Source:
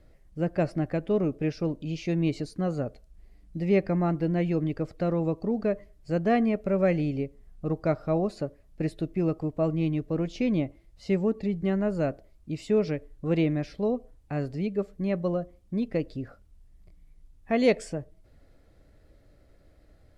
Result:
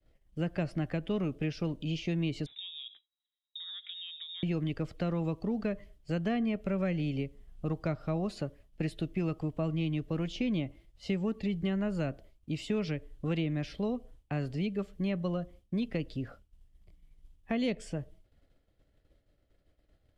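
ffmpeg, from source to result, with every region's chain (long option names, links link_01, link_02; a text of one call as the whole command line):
ffmpeg -i in.wav -filter_complex "[0:a]asettb=1/sr,asplit=3[link_01][link_02][link_03];[link_01]atrim=end=2.464[link_04];[link_02]atrim=start=2.46:end=4.43,asetpts=PTS-STARTPTS,afade=type=in:duration=0.004:curve=qsin,afade=type=out:start_time=1.966:duration=0.004:curve=qsin,highpass=frequency=240:poles=1,acompressor=threshold=-40dB:ratio=10:attack=3.2:release=140:knee=1:detection=peak,lowpass=frequency=3300:width_type=q:width=0.5098,lowpass=frequency=3300:width_type=q:width=0.6013,lowpass=frequency=3300:width_type=q:width=0.9,lowpass=frequency=3300:width_type=q:width=2.563,afreqshift=-3900[link_05];[link_03]atrim=start=4.426[link_06];[link_04][link_05]acrossfade=duration=0.004:curve1=hsin:curve2=qsin[link_07];[link_07][link_06]acrossfade=duration=0.004:curve1=qsin:curve2=hsin,agate=range=-33dB:threshold=-47dB:ratio=3:detection=peak,equalizer=frequency=3100:width=3.2:gain=9,acrossover=split=250|930[link_08][link_09][link_10];[link_08]acompressor=threshold=-31dB:ratio=4[link_11];[link_09]acompressor=threshold=-39dB:ratio=4[link_12];[link_10]acompressor=threshold=-41dB:ratio=4[link_13];[link_11][link_12][link_13]amix=inputs=3:normalize=0" out.wav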